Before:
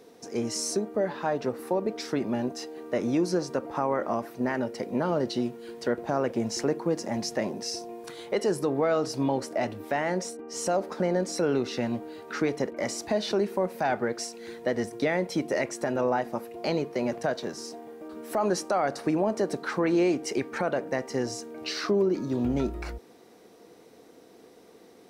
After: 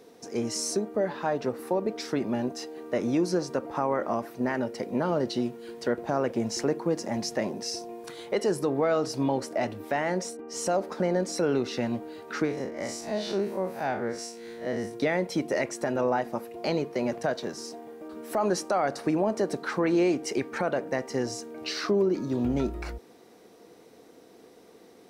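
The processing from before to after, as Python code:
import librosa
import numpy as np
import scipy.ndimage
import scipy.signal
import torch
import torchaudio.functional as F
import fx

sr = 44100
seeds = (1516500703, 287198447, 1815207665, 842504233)

y = fx.spec_blur(x, sr, span_ms=96.0, at=(12.44, 14.93), fade=0.02)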